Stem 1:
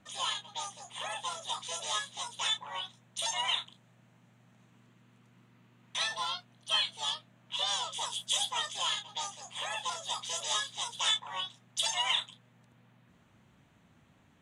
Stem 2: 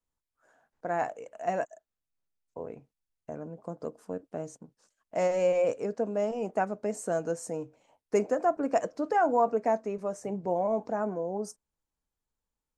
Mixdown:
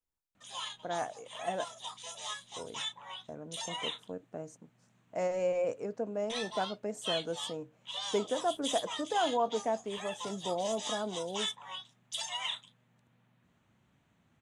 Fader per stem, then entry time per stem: −6.5, −5.5 decibels; 0.35, 0.00 seconds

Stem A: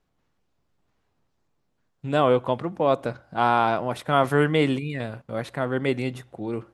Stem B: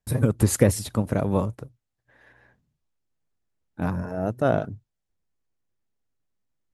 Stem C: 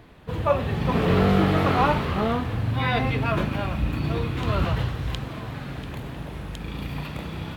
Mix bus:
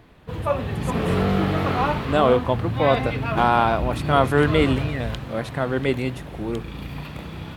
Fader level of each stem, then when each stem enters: +2.0, −17.0, −1.5 decibels; 0.00, 0.35, 0.00 seconds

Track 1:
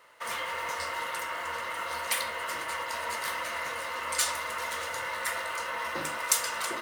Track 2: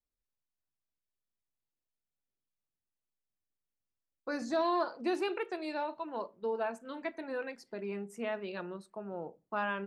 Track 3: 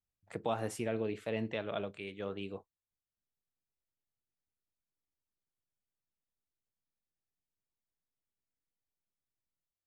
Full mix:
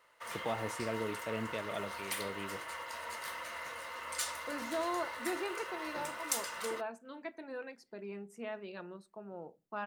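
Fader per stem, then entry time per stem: −9.0, −5.5, −2.5 decibels; 0.00, 0.20, 0.00 seconds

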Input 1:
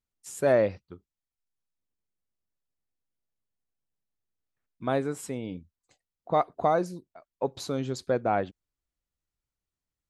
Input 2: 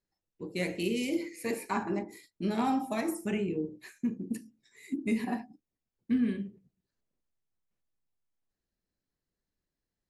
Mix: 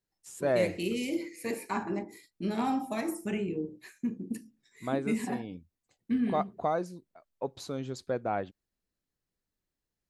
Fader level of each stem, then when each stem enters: −5.5, −1.0 decibels; 0.00, 0.00 seconds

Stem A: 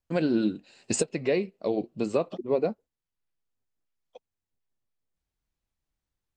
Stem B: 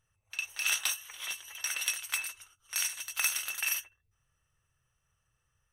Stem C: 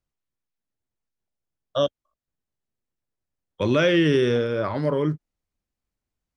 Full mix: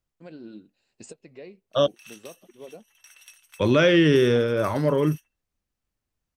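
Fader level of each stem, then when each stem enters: −17.5, −18.0, +1.5 decibels; 0.10, 1.40, 0.00 seconds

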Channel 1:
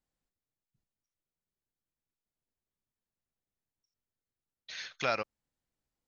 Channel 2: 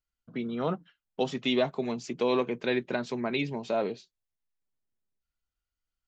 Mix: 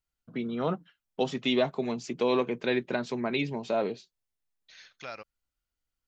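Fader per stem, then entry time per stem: −10.0, +0.5 decibels; 0.00, 0.00 seconds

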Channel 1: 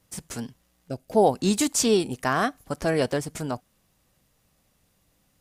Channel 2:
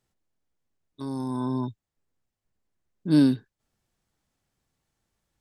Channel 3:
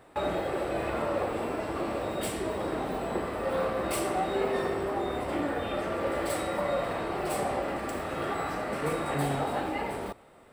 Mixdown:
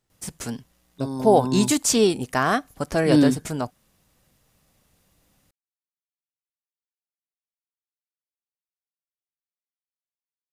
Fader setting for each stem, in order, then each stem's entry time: +2.5 dB, +1.5 dB, muted; 0.10 s, 0.00 s, muted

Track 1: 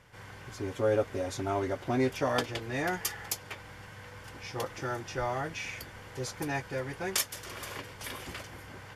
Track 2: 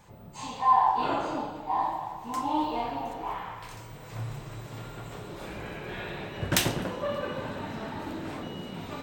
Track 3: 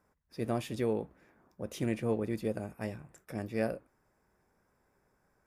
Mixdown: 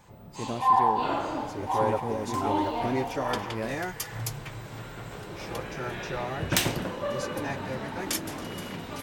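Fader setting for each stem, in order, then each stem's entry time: −1.5, 0.0, −2.0 decibels; 0.95, 0.00, 0.00 seconds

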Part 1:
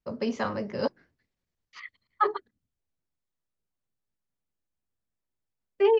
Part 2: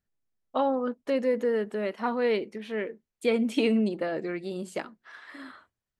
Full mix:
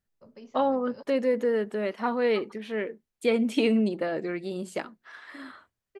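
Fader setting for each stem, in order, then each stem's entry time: −18.5, +1.0 decibels; 0.15, 0.00 seconds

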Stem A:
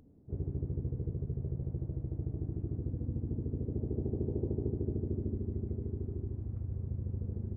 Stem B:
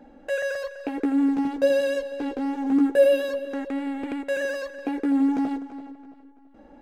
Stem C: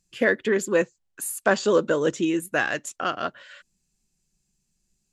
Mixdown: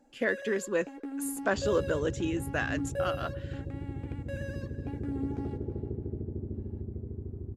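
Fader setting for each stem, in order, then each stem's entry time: −2.0, −15.0, −8.0 decibels; 1.25, 0.00, 0.00 seconds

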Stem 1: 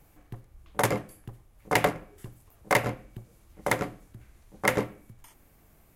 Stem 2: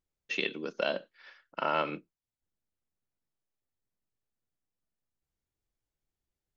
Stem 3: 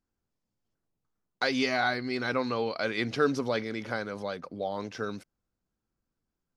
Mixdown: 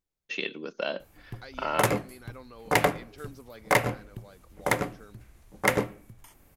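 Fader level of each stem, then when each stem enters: +1.0, −0.5, −18.0 decibels; 1.00, 0.00, 0.00 seconds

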